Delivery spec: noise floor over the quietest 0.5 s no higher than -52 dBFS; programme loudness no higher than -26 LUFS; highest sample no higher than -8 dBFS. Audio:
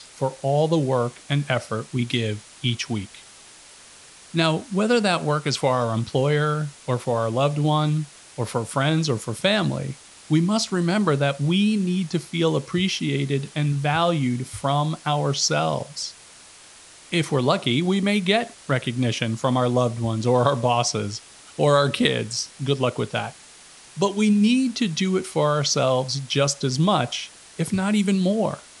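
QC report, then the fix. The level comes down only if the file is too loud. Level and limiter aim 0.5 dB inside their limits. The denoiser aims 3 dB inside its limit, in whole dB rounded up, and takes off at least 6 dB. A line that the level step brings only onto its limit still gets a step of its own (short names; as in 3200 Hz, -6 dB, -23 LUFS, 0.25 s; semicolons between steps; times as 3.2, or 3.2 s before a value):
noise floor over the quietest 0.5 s -47 dBFS: fail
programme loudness -22.5 LUFS: fail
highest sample -3.5 dBFS: fail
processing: denoiser 6 dB, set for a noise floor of -47 dBFS; gain -4 dB; limiter -8.5 dBFS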